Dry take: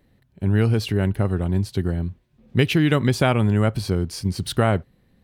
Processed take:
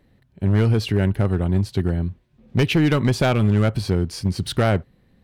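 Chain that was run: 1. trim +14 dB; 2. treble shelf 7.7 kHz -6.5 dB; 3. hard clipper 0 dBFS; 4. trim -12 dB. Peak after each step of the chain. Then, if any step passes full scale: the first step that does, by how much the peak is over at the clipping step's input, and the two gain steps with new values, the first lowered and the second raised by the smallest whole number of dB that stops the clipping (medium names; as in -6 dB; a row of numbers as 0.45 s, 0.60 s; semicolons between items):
+9.5 dBFS, +9.5 dBFS, 0.0 dBFS, -12.0 dBFS; step 1, 9.5 dB; step 1 +4 dB, step 4 -2 dB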